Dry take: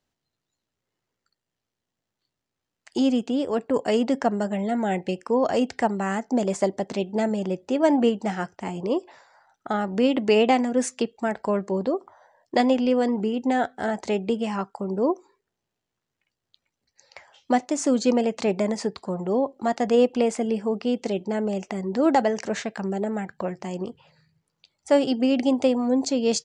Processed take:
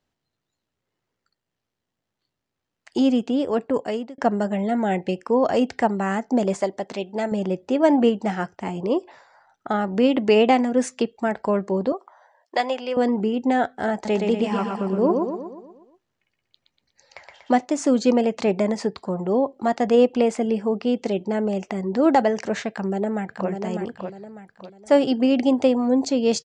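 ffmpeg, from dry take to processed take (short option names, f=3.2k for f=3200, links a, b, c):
-filter_complex "[0:a]asettb=1/sr,asplit=3[a][b][c];[a]atrim=end=6.614[d];[b]atrim=start=6.61:end=7.32,asetpts=PTS-STARTPTS,afade=t=in:d=0.004:c=qsin,afade=t=out:st=0.706:d=0.004:c=qsin,lowshelf=f=380:g=-9.5[e];[c]atrim=start=7.316[f];[d][e]acrossfade=d=0.004:c1=hsin:c2=qsin[g];[g][f]acrossfade=d=0.004:c1=qsin:c2=hsin,asettb=1/sr,asplit=3[h][i][j];[h]atrim=end=11.924[k];[i]atrim=start=11.92:end=12.97,asetpts=PTS-STARTPTS,afade=t=in:d=0.004:c=qsin,afade=t=out:st=1.046:d=0.004:c=qsin,highpass=650[l];[j]atrim=start=12.966[m];[k][l]acrossfade=d=0.004:c1=hsin:c2=qsin[n];[n][m]acrossfade=d=0.004:c1=qsin:c2=hsin,asettb=1/sr,asplit=3[o][p][q];[o]atrim=end=13.934[r];[p]atrim=start=13.93:end=17.59,asetpts=PTS-STARTPTS,afade=t=in:d=0.004:c=qsin,afade=t=out:st=3.656:d=0.004:c=qsin,aecho=1:1:120|240|360|480|600|720|840:0.631|0.328|0.171|0.0887|0.0461|0.024|0.0125,atrim=end_sample=161406[s];[q]atrim=start=17.586[t];[r][s]acrossfade=d=0.004:c1=hsin:c2=qsin[u];[u][t]acrossfade=d=0.004:c1=qsin:c2=hsin,asplit=2[v][w];[w]afade=t=in:st=22.7:d=0.01,afade=t=out:st=23.49:d=0.01,aecho=0:1:600|1200|1800|2400:0.501187|0.175416|0.0613954|0.0214884[x];[v][x]amix=inputs=2:normalize=0,asplit=2[y][z];[y]atrim=end=4.18,asetpts=PTS-STARTPTS,afade=t=out:st=3.63:d=0.55[aa];[z]atrim=start=4.18,asetpts=PTS-STARTPTS,afade=t=in:d=0.004:c=hsin[ab];[aa][ab]concat=n=2:v=0:a=1,highshelf=f=6.5k:g=-9,volume=2.5dB"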